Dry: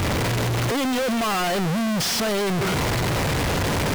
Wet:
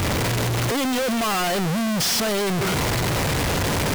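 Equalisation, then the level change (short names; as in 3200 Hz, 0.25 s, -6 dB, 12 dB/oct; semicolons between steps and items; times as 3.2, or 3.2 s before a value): high shelf 5300 Hz +4.5 dB; 0.0 dB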